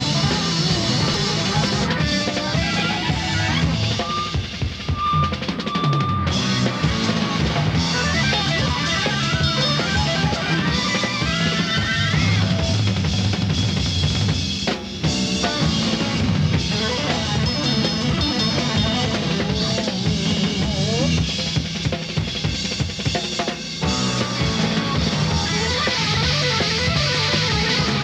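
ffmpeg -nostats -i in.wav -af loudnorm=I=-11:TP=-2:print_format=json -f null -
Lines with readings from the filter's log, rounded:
"input_i" : "-19.8",
"input_tp" : "-5.5",
"input_lra" : "2.7",
"input_thresh" : "-29.8",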